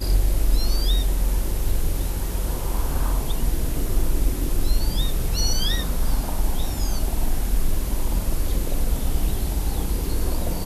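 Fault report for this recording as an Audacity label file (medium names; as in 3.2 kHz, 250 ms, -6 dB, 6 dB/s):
1.690000	1.690000	dropout 2.4 ms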